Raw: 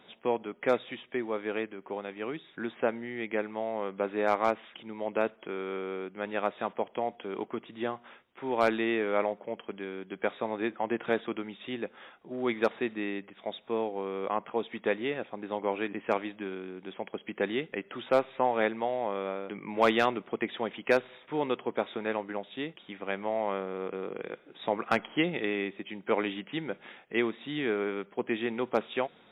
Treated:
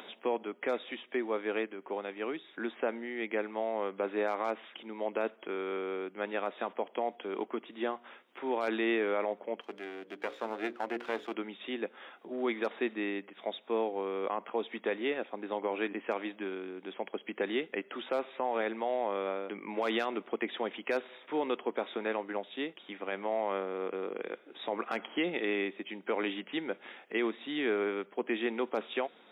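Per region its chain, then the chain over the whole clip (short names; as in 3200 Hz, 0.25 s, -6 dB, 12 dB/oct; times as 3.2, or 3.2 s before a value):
9.61–11.34 half-wave gain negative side -12 dB + notches 60/120/180/240/300/360/420/480/540 Hz
whole clip: HPF 230 Hz 24 dB/oct; limiter -21.5 dBFS; upward compressor, threshold -42 dBFS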